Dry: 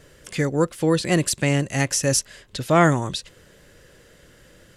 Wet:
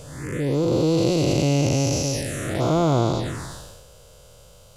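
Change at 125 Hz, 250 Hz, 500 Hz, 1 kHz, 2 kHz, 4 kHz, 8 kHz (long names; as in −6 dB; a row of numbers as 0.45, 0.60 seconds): +2.0, +1.5, +0.5, −3.0, −8.0, −1.0, −5.0 decibels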